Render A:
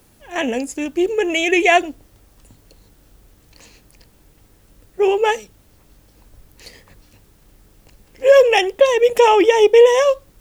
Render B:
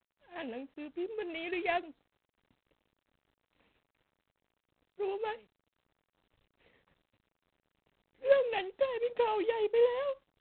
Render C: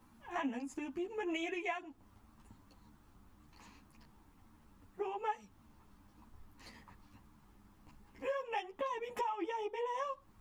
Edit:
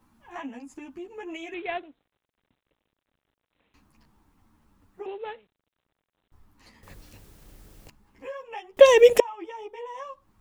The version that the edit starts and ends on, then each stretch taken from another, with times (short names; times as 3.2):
C
1.54–3.74 from B
5.06–6.32 from B
6.83–7.9 from A
8.77–9.2 from A